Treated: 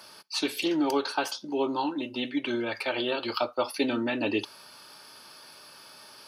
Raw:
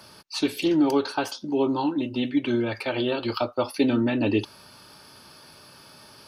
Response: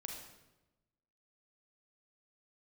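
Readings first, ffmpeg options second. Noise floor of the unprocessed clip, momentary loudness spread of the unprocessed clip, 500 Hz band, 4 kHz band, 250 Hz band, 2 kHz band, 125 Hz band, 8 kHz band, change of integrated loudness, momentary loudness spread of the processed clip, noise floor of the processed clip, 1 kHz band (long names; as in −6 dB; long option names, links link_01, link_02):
−50 dBFS, 6 LU, −4.0 dB, +0.5 dB, −6.5 dB, +0.5 dB, −13.0 dB, can't be measured, −4.0 dB, 20 LU, −51 dBFS, −1.0 dB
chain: -filter_complex "[0:a]highpass=frequency=580:poles=1,asplit=2[link_01][link_02];[1:a]atrim=start_sample=2205,atrim=end_sample=3087[link_03];[link_02][link_03]afir=irnorm=-1:irlink=0,volume=-17.5dB[link_04];[link_01][link_04]amix=inputs=2:normalize=0"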